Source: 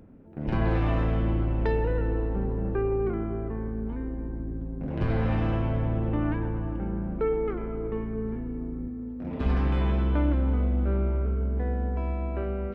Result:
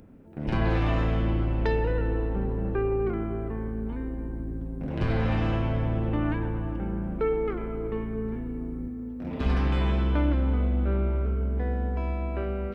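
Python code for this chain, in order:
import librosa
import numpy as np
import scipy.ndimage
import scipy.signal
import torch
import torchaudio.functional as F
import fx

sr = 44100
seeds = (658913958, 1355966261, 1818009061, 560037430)

y = fx.high_shelf(x, sr, hz=2700.0, db=9.0)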